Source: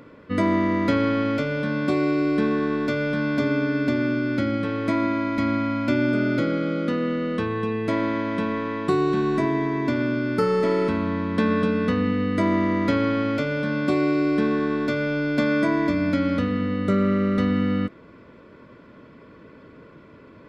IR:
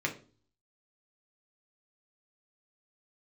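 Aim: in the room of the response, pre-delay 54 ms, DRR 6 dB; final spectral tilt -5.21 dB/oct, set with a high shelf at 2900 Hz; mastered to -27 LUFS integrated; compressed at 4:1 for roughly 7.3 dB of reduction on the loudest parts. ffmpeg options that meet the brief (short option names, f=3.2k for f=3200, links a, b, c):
-filter_complex "[0:a]highshelf=f=2.9k:g=-6,acompressor=threshold=-26dB:ratio=4,asplit=2[a][b];[1:a]atrim=start_sample=2205,adelay=54[c];[b][c]afir=irnorm=-1:irlink=0,volume=-12.5dB[d];[a][d]amix=inputs=2:normalize=0,volume=-0.5dB"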